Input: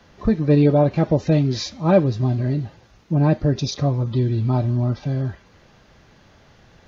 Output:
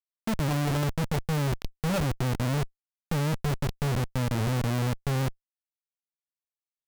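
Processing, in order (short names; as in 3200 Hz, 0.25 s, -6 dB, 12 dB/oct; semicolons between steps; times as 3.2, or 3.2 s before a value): speaker cabinet 110–5300 Hz, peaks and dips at 140 Hz +7 dB, 230 Hz +4 dB, 340 Hz -5 dB, 520 Hz +4 dB, 1800 Hz +5 dB; Schmitt trigger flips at -19 dBFS; gain -8 dB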